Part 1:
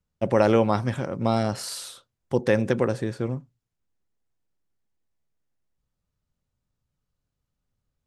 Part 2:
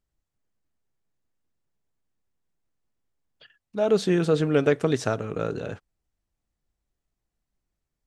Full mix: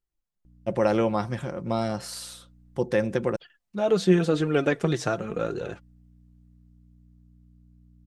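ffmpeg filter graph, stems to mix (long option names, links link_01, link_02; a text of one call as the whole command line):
ffmpeg -i stem1.wav -i stem2.wav -filter_complex "[0:a]aeval=exprs='val(0)+0.00355*(sin(2*PI*60*n/s)+sin(2*PI*2*60*n/s)/2+sin(2*PI*3*60*n/s)/3+sin(2*PI*4*60*n/s)/4+sin(2*PI*5*60*n/s)/5)':channel_layout=same,adelay=450,volume=-4dB,asplit=3[link_01][link_02][link_03];[link_01]atrim=end=3.36,asetpts=PTS-STARTPTS,afade=type=out:start_time=3.356:duration=0.004:curve=hsin[link_04];[link_02]atrim=start=3.36:end=5.24,asetpts=PTS-STARTPTS,volume=0[link_05];[link_03]atrim=start=5.24,asetpts=PTS-STARTPTS,afade=type=in:duration=0.004:curve=hsin[link_06];[link_04][link_05][link_06]concat=n=3:v=0:a=1[link_07];[1:a]dynaudnorm=framelen=210:gausssize=17:maxgain=11.5dB,flanger=delay=2:depth=4.8:regen=35:speed=0.89:shape=triangular,volume=-4dB[link_08];[link_07][link_08]amix=inputs=2:normalize=0,aecho=1:1:5.7:0.34" out.wav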